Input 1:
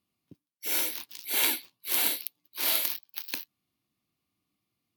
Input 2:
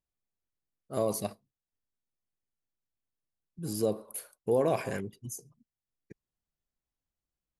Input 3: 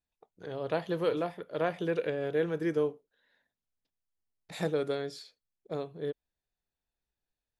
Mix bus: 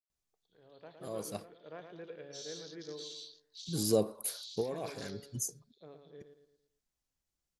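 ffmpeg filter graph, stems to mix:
-filter_complex "[0:a]acompressor=threshold=0.0355:ratio=6,adelay=1700,volume=0.841[s0];[1:a]equalizer=f=6100:t=o:w=1.1:g=6.5,adelay=100,volume=1.12[s1];[2:a]lowpass=4500,dynaudnorm=f=200:g=9:m=2.37,volume=0.112,asplit=3[s2][s3][s4];[s3]volume=0.501[s5];[s4]apad=whole_len=339490[s6];[s1][s6]sidechaincompress=threshold=0.00126:ratio=3:attack=30:release=197[s7];[s0][s2]amix=inputs=2:normalize=0,asuperpass=centerf=4900:order=8:qfactor=1.5,alimiter=level_in=5.01:limit=0.0631:level=0:latency=1:release=28,volume=0.2,volume=1[s8];[s5]aecho=0:1:112|224|336|448|560|672:1|0.43|0.185|0.0795|0.0342|0.0147[s9];[s7][s8][s9]amix=inputs=3:normalize=0"

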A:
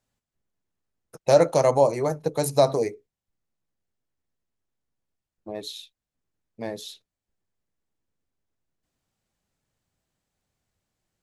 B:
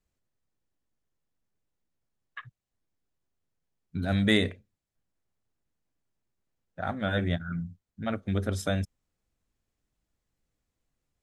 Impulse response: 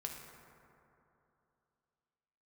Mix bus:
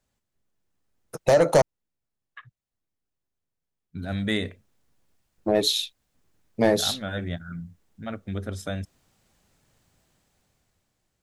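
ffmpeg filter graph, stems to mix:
-filter_complex "[0:a]acompressor=threshold=0.0794:ratio=6,asoftclip=type=tanh:threshold=0.0794,dynaudnorm=f=280:g=9:m=4.22,volume=1.19,asplit=3[s0][s1][s2];[s0]atrim=end=1.62,asetpts=PTS-STARTPTS,afade=t=out:st=1.616:d=0.004:c=hsin[s3];[s1]atrim=start=1.62:end=3.97,asetpts=PTS-STARTPTS,volume=0[s4];[s2]atrim=start=3.97,asetpts=PTS-STARTPTS,afade=t=in:d=0.004:c=hsin[s5];[s3][s4][s5]concat=n=3:v=0:a=1[s6];[1:a]volume=0.708[s7];[s6][s7]amix=inputs=2:normalize=0"

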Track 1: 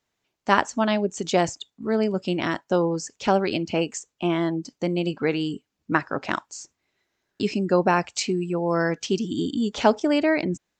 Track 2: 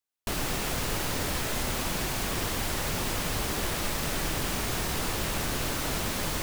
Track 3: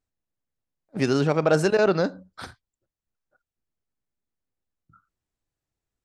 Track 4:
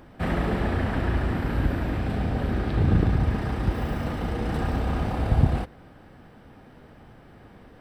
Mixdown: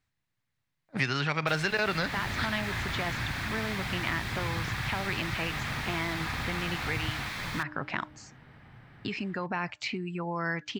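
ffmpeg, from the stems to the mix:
-filter_complex "[0:a]highshelf=f=3000:g=-12,bandreject=f=303.4:t=h:w=4,bandreject=f=606.8:t=h:w=4,alimiter=limit=0.15:level=0:latency=1:release=53,adelay=1650,volume=0.562[s0];[1:a]bandreject=f=2900:w=11,adelay=1200,volume=0.316[s1];[2:a]volume=1.06[s2];[3:a]adelay=1650,volume=0.316[s3];[s0][s1][s2][s3]amix=inputs=4:normalize=0,equalizer=f=125:t=o:w=1:g=12,equalizer=f=500:t=o:w=1:g=-3,equalizer=f=1000:t=o:w=1:g=5,equalizer=f=2000:t=o:w=1:g=11,equalizer=f=4000:t=o:w=1:g=6,acrossover=split=760|2200|4600[s4][s5][s6][s7];[s4]acompressor=threshold=0.02:ratio=4[s8];[s5]acompressor=threshold=0.02:ratio=4[s9];[s6]acompressor=threshold=0.0224:ratio=4[s10];[s7]acompressor=threshold=0.00316:ratio=4[s11];[s8][s9][s10][s11]amix=inputs=4:normalize=0"

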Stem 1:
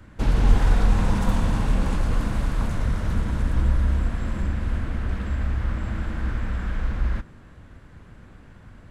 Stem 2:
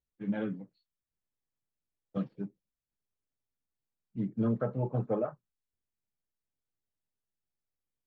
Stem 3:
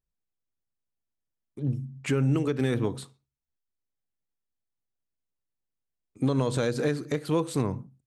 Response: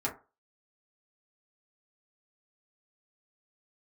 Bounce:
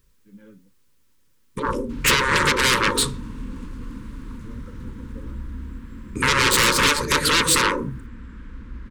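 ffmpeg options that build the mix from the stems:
-filter_complex "[0:a]equalizer=f=260:t=o:w=0.49:g=12,bandreject=f=550:w=12,adelay=1700,volume=0.224[s0];[1:a]adelay=50,volume=0.2[s1];[2:a]aeval=exprs='0.2*sin(PI/2*7.94*val(0)/0.2)':c=same,volume=1.19,asplit=2[s2][s3];[s3]volume=0.2[s4];[3:a]atrim=start_sample=2205[s5];[s4][s5]afir=irnorm=-1:irlink=0[s6];[s0][s1][s2][s6]amix=inputs=4:normalize=0,afftfilt=real='re*lt(hypot(re,im),0.631)':imag='im*lt(hypot(re,im),0.631)':win_size=1024:overlap=0.75,asuperstop=centerf=710:order=20:qfactor=2.4"

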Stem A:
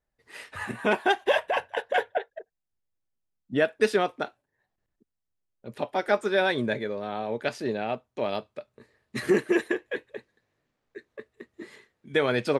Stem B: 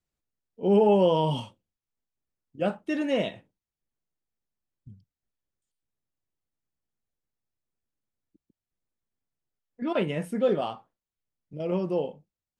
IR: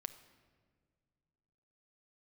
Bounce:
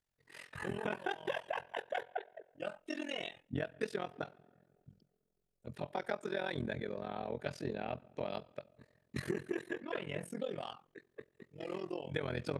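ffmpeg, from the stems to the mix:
-filter_complex "[0:a]volume=0.422,asplit=3[s0][s1][s2];[s1]volume=0.501[s3];[1:a]highpass=f=1200:p=1,acompressor=threshold=0.0282:ratio=6,aphaser=in_gain=1:out_gain=1:delay=3.3:decay=0.46:speed=0.2:type=sinusoidal,volume=0.891,asplit=2[s4][s5];[s5]volume=0.119[s6];[s2]apad=whole_len=555220[s7];[s4][s7]sidechaincompress=threshold=0.0141:ratio=8:attack=16:release=780[s8];[2:a]atrim=start_sample=2205[s9];[s3][s6]amix=inputs=2:normalize=0[s10];[s10][s9]afir=irnorm=-1:irlink=0[s11];[s0][s8][s11]amix=inputs=3:normalize=0,equalizer=f=140:t=o:w=0.47:g=12,tremolo=f=43:d=0.947,acompressor=threshold=0.0224:ratio=6"

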